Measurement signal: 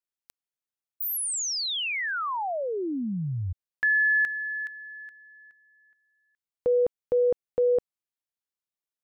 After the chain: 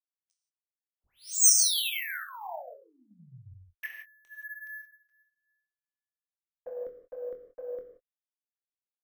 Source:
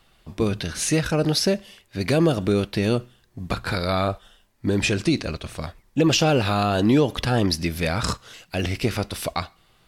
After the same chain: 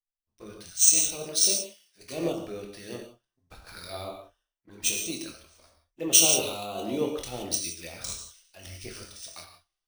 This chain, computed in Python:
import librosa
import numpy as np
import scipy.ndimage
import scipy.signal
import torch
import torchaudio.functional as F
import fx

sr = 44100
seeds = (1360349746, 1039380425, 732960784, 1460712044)

y = fx.lowpass_res(x, sr, hz=6000.0, q=7.1)
y = fx.peak_eq(y, sr, hz=110.0, db=-14.0, octaves=2.7)
y = fx.env_flanger(y, sr, rest_ms=11.4, full_db=-21.0)
y = fx.doubler(y, sr, ms=24.0, db=-9.0)
y = fx.rev_gated(y, sr, seeds[0], gate_ms=200, shape='flat', drr_db=1.0)
y = np.repeat(y[::3], 3)[:len(y)]
y = fx.band_widen(y, sr, depth_pct=100)
y = F.gain(torch.from_numpy(y), -11.5).numpy()